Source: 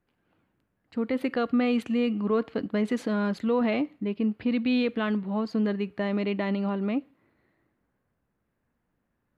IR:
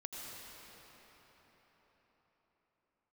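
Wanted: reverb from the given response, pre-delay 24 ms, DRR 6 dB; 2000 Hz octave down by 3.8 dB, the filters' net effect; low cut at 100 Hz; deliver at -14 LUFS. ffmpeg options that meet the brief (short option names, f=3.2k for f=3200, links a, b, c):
-filter_complex "[0:a]highpass=100,equalizer=f=2k:t=o:g=-5,asplit=2[a][b];[1:a]atrim=start_sample=2205,adelay=24[c];[b][c]afir=irnorm=-1:irlink=0,volume=-5dB[d];[a][d]amix=inputs=2:normalize=0,volume=12.5dB"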